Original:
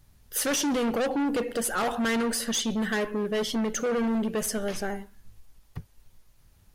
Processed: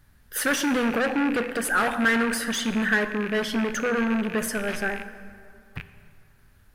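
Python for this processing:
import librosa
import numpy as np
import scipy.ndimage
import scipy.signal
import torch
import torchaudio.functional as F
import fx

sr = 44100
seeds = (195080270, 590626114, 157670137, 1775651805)

y = fx.rattle_buzz(x, sr, strikes_db=-41.0, level_db=-26.0)
y = fx.graphic_eq_15(y, sr, hz=(250, 1600, 6300), db=(3, 11, -4))
y = fx.rev_plate(y, sr, seeds[0], rt60_s=2.6, hf_ratio=0.55, predelay_ms=0, drr_db=11.0)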